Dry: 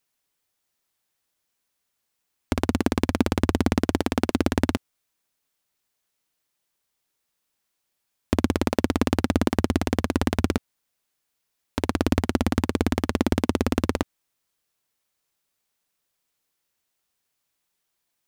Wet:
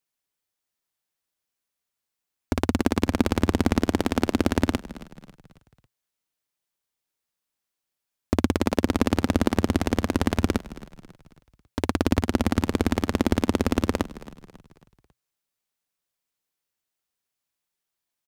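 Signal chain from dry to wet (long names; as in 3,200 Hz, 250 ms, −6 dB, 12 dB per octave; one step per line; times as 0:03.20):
noise gate −38 dBFS, range −7 dB
echo with shifted repeats 273 ms, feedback 45%, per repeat −33 Hz, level −17 dB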